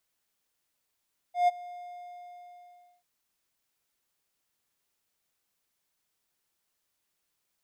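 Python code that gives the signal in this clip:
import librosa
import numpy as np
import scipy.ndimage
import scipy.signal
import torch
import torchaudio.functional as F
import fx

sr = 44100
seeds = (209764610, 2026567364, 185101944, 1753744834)

y = fx.adsr_tone(sr, wave='triangle', hz=710.0, attack_ms=139.0, decay_ms=23.0, sustain_db=-21.5, held_s=0.37, release_ms=1320.0, level_db=-16.0)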